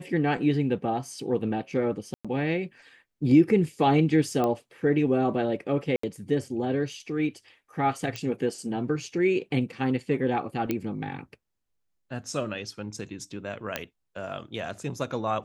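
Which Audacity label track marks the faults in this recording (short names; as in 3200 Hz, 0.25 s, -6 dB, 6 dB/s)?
2.140000	2.250000	gap 0.106 s
4.440000	4.440000	pop -15 dBFS
5.960000	6.030000	gap 74 ms
8.160000	8.160000	pop -18 dBFS
10.710000	10.710000	pop -14 dBFS
13.760000	13.760000	pop -12 dBFS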